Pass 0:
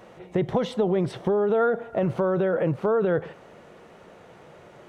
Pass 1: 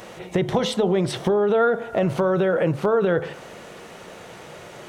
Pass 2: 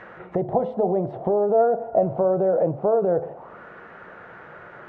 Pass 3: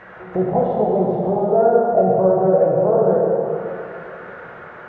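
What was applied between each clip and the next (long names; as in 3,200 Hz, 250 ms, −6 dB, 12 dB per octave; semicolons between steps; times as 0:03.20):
high-shelf EQ 2,700 Hz +11.5 dB; hum removal 72.42 Hz, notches 21; in parallel at +2 dB: downward compressor, threshold −31 dBFS, peak gain reduction 13 dB
envelope-controlled low-pass 700–1,900 Hz down, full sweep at −24 dBFS; level −5.5 dB
dense smooth reverb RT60 2.6 s, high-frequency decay 0.9×, DRR −4.5 dB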